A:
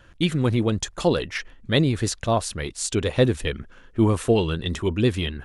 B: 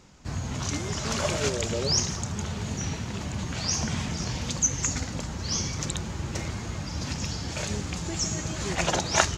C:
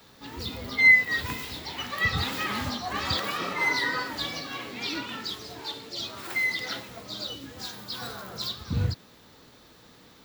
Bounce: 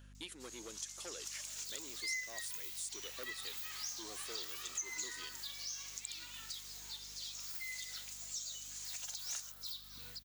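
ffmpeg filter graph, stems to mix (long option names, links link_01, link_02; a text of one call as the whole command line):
ffmpeg -i stem1.wav -i stem2.wav -i stem3.wav -filter_complex "[0:a]highpass=230,equalizer=frequency=360:width=0.76:gain=11,asoftclip=type=tanh:threshold=-9.5dB,volume=-2.5dB[link_01];[1:a]highpass=600,crystalizer=i=1.5:c=0,adelay=150,volume=-6dB[link_02];[2:a]adelay=1250,volume=1.5dB[link_03];[link_01][link_02][link_03]amix=inputs=3:normalize=0,aderivative,aeval=exprs='val(0)+0.00158*(sin(2*PI*50*n/s)+sin(2*PI*2*50*n/s)/2+sin(2*PI*3*50*n/s)/3+sin(2*PI*4*50*n/s)/4+sin(2*PI*5*50*n/s)/5)':channel_layout=same,acompressor=threshold=-50dB:ratio=2" out.wav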